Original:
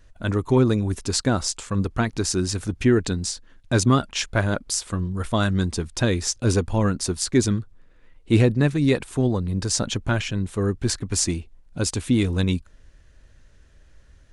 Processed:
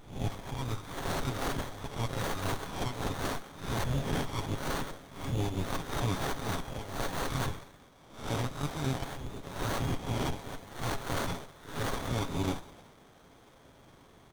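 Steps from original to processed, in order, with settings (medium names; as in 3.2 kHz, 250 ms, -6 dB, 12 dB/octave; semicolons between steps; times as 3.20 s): reverse spectral sustain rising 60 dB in 0.37 s; Chebyshev high-pass 2.1 kHz, order 10; peaking EQ 3.3 kHz +15 dB 0.26 oct; comb 7.3 ms, depth 65%; peak limiter -16.5 dBFS, peak gain reduction 12.5 dB; power-law waveshaper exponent 0.7; plate-style reverb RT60 1.7 s, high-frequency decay 0.8×, DRR 15 dB; sliding maximum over 17 samples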